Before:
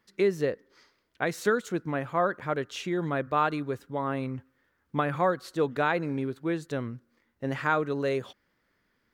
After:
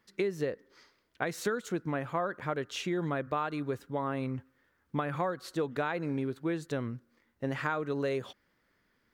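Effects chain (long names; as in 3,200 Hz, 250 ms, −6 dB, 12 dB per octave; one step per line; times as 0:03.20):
downward compressor 5 to 1, threshold −28 dBFS, peak gain reduction 8.5 dB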